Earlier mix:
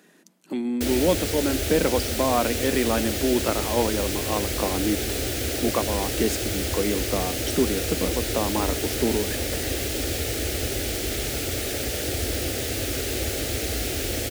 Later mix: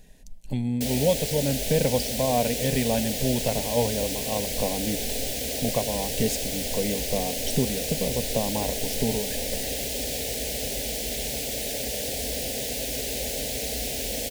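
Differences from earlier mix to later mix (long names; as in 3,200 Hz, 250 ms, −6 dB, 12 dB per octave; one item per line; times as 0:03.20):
speech: remove Chebyshev high-pass filter 170 Hz, order 6
master: add phaser with its sweep stopped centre 340 Hz, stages 6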